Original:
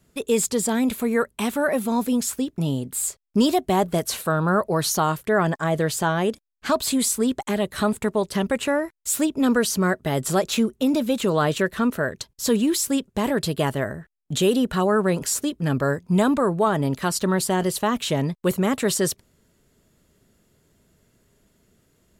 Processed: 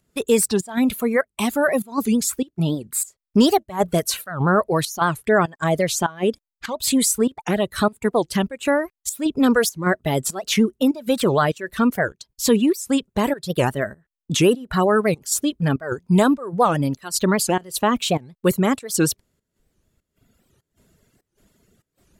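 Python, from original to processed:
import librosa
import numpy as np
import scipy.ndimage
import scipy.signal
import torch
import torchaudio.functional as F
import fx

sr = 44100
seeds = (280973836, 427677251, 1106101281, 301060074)

y = fx.volume_shaper(x, sr, bpm=99, per_beat=1, depth_db=-13, release_ms=164.0, shape='slow start')
y = fx.dereverb_blind(y, sr, rt60_s=1.7)
y = fx.record_warp(y, sr, rpm=78.0, depth_cents=250.0)
y = y * 10.0 ** (4.0 / 20.0)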